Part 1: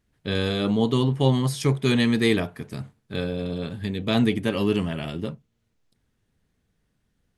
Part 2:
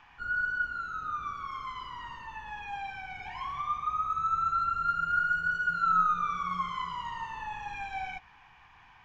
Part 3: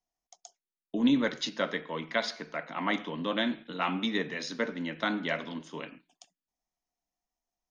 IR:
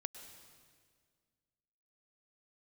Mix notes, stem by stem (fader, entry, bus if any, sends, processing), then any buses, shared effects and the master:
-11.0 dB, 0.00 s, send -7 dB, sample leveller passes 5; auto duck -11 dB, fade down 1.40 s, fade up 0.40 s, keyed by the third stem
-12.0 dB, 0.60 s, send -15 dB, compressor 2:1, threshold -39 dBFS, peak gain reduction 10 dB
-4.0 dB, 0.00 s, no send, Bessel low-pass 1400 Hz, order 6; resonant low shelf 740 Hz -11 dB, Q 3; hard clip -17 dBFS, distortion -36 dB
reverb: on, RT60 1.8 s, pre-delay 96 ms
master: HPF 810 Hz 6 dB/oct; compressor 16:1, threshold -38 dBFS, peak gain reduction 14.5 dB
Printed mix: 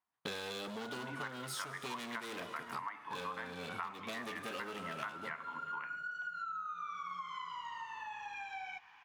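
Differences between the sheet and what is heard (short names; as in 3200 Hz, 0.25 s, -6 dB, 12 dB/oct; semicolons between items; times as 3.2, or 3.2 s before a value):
stem 2 -12.0 dB -> -2.5 dB; stem 3 -4.0 dB -> +6.5 dB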